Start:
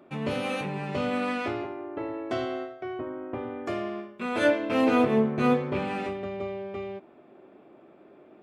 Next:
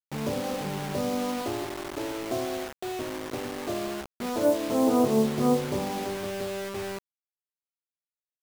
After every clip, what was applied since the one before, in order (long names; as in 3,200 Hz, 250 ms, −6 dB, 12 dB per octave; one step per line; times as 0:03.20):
Butterworth low-pass 1,100 Hz 36 dB per octave
bit reduction 6 bits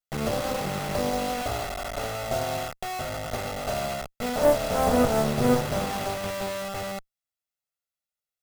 lower of the sound and its delayed copy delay 1.5 ms
level +4 dB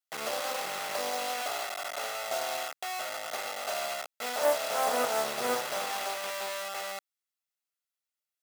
Bessel high-pass filter 880 Hz, order 2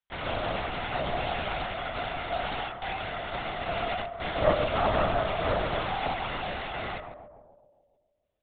on a send: feedback echo with a band-pass in the loop 140 ms, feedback 63%, band-pass 510 Hz, level −5 dB
on the sum: linear-prediction vocoder at 8 kHz whisper
level +2.5 dB